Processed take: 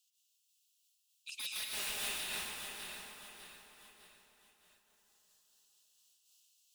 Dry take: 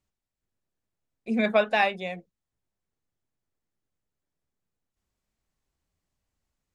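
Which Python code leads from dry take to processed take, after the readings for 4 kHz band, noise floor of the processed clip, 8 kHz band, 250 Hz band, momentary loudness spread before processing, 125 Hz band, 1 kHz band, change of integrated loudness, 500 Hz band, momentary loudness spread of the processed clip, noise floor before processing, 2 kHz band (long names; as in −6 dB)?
−0.5 dB, −77 dBFS, can't be measured, −28.5 dB, 14 LU, −19.5 dB, −21.0 dB, −15.0 dB, −27.5 dB, 20 LU, below −85 dBFS, −13.0 dB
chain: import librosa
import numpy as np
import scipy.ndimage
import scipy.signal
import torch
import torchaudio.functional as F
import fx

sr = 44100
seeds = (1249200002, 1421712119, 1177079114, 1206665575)

p1 = scipy.signal.sosfilt(scipy.signal.butter(16, 2700.0, 'highpass', fs=sr, output='sos'), x)
p2 = fx.high_shelf(p1, sr, hz=4900.0, db=3.0)
p3 = fx.transient(p2, sr, attack_db=-2, sustain_db=-7)
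p4 = fx.over_compress(p3, sr, threshold_db=-42.0, ratio=-1.0)
p5 = p3 + (p4 * 10.0 ** (3.0 / 20.0))
p6 = 10.0 ** (-37.0 / 20.0) * (np.abs((p5 / 10.0 ** (-37.0 / 20.0) + 3.0) % 4.0 - 2.0) - 1.0)
p7 = p6 + fx.echo_feedback(p6, sr, ms=603, feedback_pct=39, wet_db=-8.5, dry=0)
p8 = fx.rev_plate(p7, sr, seeds[0], rt60_s=4.3, hf_ratio=0.45, predelay_ms=115, drr_db=-6.0)
p9 = fx.am_noise(p8, sr, seeds[1], hz=5.7, depth_pct=50)
y = p9 * 10.0 ** (3.5 / 20.0)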